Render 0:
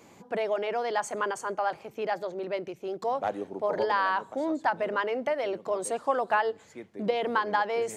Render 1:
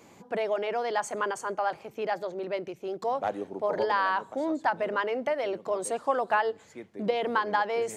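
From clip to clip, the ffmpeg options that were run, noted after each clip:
ffmpeg -i in.wav -af anull out.wav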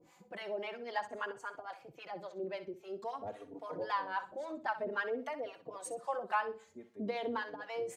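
ffmpeg -i in.wav -filter_complex "[0:a]acrossover=split=640[link_01][link_02];[link_01]aeval=exprs='val(0)*(1-1/2+1/2*cos(2*PI*3.7*n/s))':channel_layout=same[link_03];[link_02]aeval=exprs='val(0)*(1-1/2-1/2*cos(2*PI*3.7*n/s))':channel_layout=same[link_04];[link_03][link_04]amix=inputs=2:normalize=0,aecho=1:1:63|126|189:0.224|0.0537|0.0129,asplit=2[link_05][link_06];[link_06]adelay=3.6,afreqshift=0.51[link_07];[link_05][link_07]amix=inputs=2:normalize=1,volume=-2.5dB" out.wav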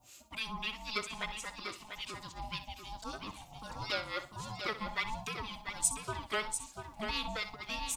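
ffmpeg -i in.wav -af "aeval=exprs='val(0)*sin(2*PI*430*n/s)':channel_layout=same,aecho=1:1:693:0.422,aexciter=amount=6.8:drive=4.4:freq=2400" out.wav

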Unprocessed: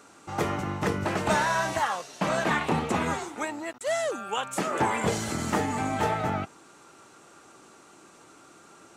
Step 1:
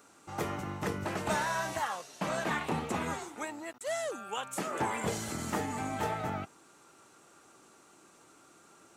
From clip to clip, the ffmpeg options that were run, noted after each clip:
ffmpeg -i in.wav -af "highshelf=frequency=12000:gain=11.5,volume=-7dB" out.wav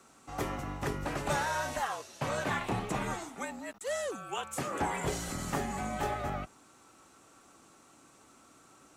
ffmpeg -i in.wav -af "afreqshift=-46" out.wav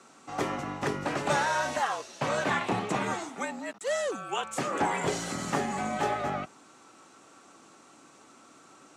ffmpeg -i in.wav -af "highpass=160,lowpass=7800,volume=5dB" out.wav

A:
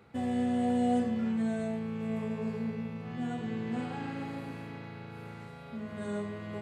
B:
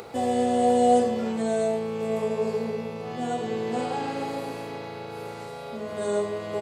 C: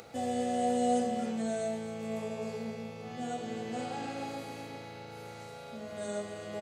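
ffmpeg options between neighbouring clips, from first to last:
ffmpeg -i in.wav -af "firequalizer=gain_entry='entry(210,0);entry(430,14);entry(720,13);entry(1600,4);entry(4800,15)':delay=0.05:min_phase=1,acompressor=mode=upward:threshold=-34dB:ratio=2.5" out.wav
ffmpeg -i in.wav -af "equalizer=frequency=400:width_type=o:width=0.33:gain=-10,equalizer=frequency=1000:width_type=o:width=0.33:gain=-10,equalizer=frequency=6300:width_type=o:width=0.33:gain=5,aecho=1:1:263:0.299,volume=-6.5dB" out.wav

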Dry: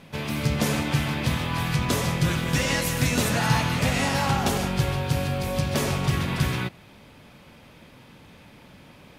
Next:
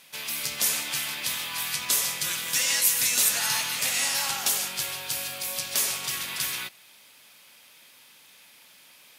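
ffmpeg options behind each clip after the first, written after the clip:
ffmpeg -i in.wav -af "aderivative,volume=8.5dB" out.wav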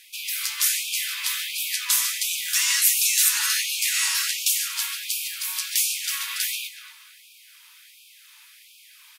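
ffmpeg -i in.wav -filter_complex "[0:a]acrossover=split=760[link_01][link_02];[link_01]acompressor=threshold=-53dB:ratio=6[link_03];[link_03][link_02]amix=inputs=2:normalize=0,asplit=2[link_04][link_05];[link_05]adelay=235,lowpass=frequency=4900:poles=1,volume=-12dB,asplit=2[link_06][link_07];[link_07]adelay=235,lowpass=frequency=4900:poles=1,volume=0.4,asplit=2[link_08][link_09];[link_09]adelay=235,lowpass=frequency=4900:poles=1,volume=0.4,asplit=2[link_10][link_11];[link_11]adelay=235,lowpass=frequency=4900:poles=1,volume=0.4[link_12];[link_04][link_06][link_08][link_10][link_12]amix=inputs=5:normalize=0,afftfilt=real='re*gte(b*sr/1024,850*pow(2300/850,0.5+0.5*sin(2*PI*1.4*pts/sr)))':imag='im*gte(b*sr/1024,850*pow(2300/850,0.5+0.5*sin(2*PI*1.4*pts/sr)))':win_size=1024:overlap=0.75,volume=3dB" out.wav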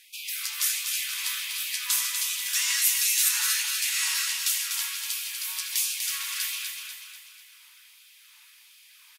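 ffmpeg -i in.wav -af "aecho=1:1:245|490|735|980|1225|1470:0.501|0.241|0.115|0.0554|0.0266|0.0128,volume=-4.5dB" out.wav

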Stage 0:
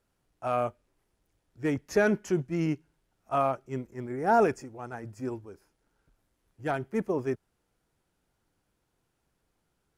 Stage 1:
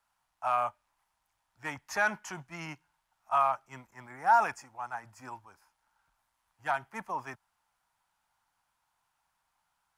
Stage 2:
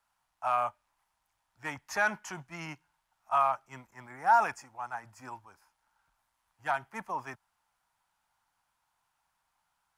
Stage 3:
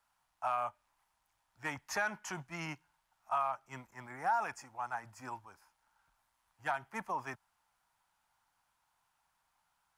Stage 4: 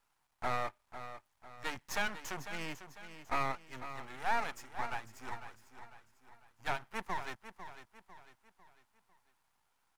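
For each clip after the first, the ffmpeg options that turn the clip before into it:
ffmpeg -i in.wav -filter_complex "[0:a]lowshelf=frequency=610:width_type=q:width=3:gain=-13.5,acrossover=split=160|850|3900[link_01][link_02][link_03][link_04];[link_02]alimiter=level_in=4dB:limit=-24dB:level=0:latency=1,volume=-4dB[link_05];[link_01][link_05][link_03][link_04]amix=inputs=4:normalize=0" out.wav
ffmpeg -i in.wav -af anull out.wav
ffmpeg -i in.wav -af "acompressor=threshold=-33dB:ratio=2.5" out.wav
ffmpeg -i in.wav -af "aeval=exprs='max(val(0),0)':channel_layout=same,aecho=1:1:499|998|1497|1996:0.266|0.112|0.0469|0.0197,volume=3.5dB" out.wav

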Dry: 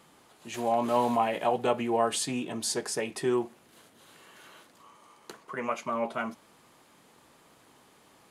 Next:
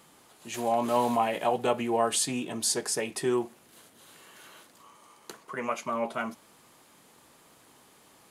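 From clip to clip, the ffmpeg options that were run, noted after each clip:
ffmpeg -i in.wav -af "highshelf=frequency=6000:gain=7" out.wav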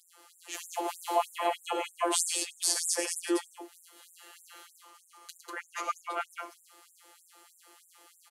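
ffmpeg -i in.wav -filter_complex "[0:a]afftfilt=real='hypot(re,im)*cos(PI*b)':imag='0':win_size=1024:overlap=0.75,asplit=2[link_01][link_02];[link_02]aecho=0:1:69|106|194:0.316|0.422|0.596[link_03];[link_01][link_03]amix=inputs=2:normalize=0,afftfilt=real='re*gte(b*sr/1024,230*pow(7100/230,0.5+0.5*sin(2*PI*3.2*pts/sr)))':imag='im*gte(b*sr/1024,230*pow(7100/230,0.5+0.5*sin(2*PI*3.2*pts/sr)))':win_size=1024:overlap=0.75,volume=2.5dB" out.wav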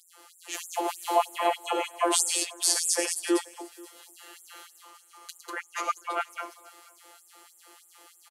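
ffmpeg -i in.wav -af "aecho=1:1:484|968:0.0708|0.0205,volume=4dB" out.wav

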